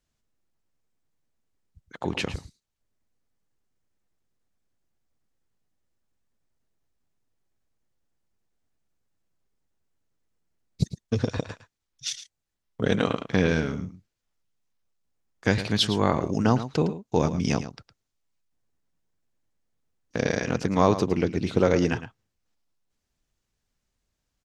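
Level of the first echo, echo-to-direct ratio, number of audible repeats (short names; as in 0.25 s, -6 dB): -12.5 dB, -12.5 dB, 1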